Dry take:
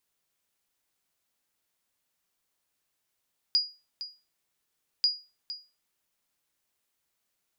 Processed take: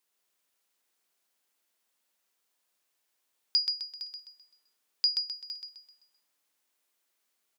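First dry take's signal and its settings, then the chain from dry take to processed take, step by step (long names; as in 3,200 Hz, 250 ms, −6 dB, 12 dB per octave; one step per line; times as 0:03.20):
ping with an echo 4,880 Hz, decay 0.30 s, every 1.49 s, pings 2, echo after 0.46 s, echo −13.5 dB −16.5 dBFS
high-pass filter 260 Hz 12 dB per octave
repeating echo 129 ms, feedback 42%, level −4 dB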